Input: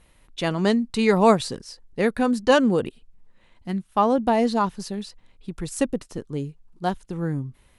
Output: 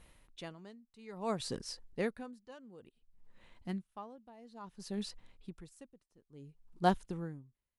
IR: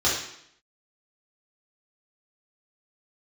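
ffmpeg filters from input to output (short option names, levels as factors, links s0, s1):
-af "aeval=exprs='val(0)*pow(10,-33*(0.5-0.5*cos(2*PI*0.58*n/s))/20)':c=same,volume=0.708"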